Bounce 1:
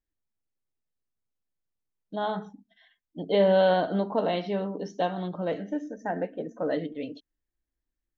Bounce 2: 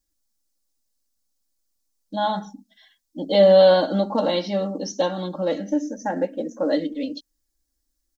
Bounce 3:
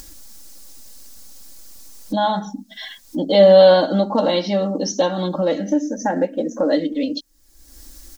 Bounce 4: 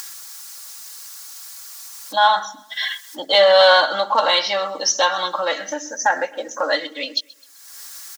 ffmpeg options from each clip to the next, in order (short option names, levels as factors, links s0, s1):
-af "highshelf=f=3700:t=q:w=1.5:g=10,aecho=1:1:3.6:0.98,volume=1.41"
-af "acompressor=mode=upward:threshold=0.112:ratio=2.5,volume=1.5"
-filter_complex "[0:a]highpass=f=1200:t=q:w=1.6,asplit=2[s0][s1];[s1]asoftclip=type=tanh:threshold=0.112,volume=0.299[s2];[s0][s2]amix=inputs=2:normalize=0,aecho=1:1:129|258|387:0.0708|0.0319|0.0143,volume=2"